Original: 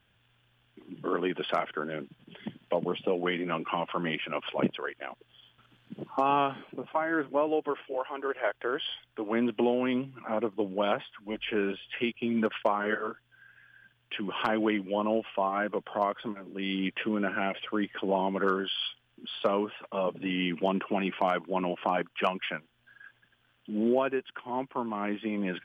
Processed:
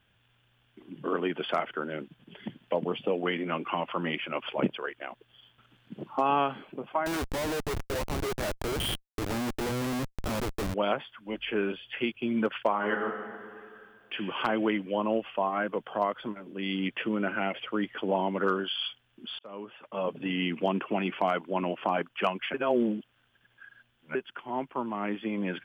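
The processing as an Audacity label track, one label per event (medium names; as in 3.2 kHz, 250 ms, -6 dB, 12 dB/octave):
7.060000	10.740000	Schmitt trigger flips at -36.5 dBFS
12.690000	14.180000	reverb throw, RT60 2.3 s, DRR 5.5 dB
19.390000	20.150000	fade in
22.540000	24.150000	reverse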